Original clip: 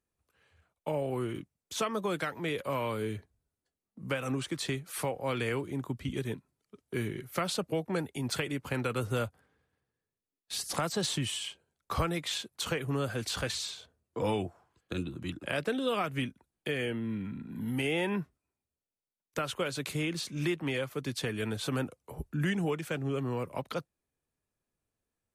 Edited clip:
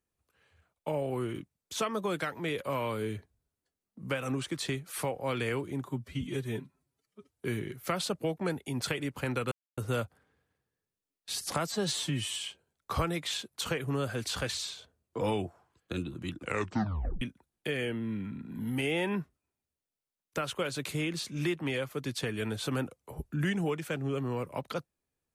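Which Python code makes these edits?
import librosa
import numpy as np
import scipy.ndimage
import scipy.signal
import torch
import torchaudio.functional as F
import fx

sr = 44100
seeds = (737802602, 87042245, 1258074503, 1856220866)

y = fx.edit(x, sr, fx.stretch_span(start_s=5.84, length_s=1.03, factor=1.5),
    fx.insert_silence(at_s=9.0, length_s=0.26),
    fx.stretch_span(start_s=10.9, length_s=0.44, factor=1.5),
    fx.tape_stop(start_s=15.38, length_s=0.84), tone=tone)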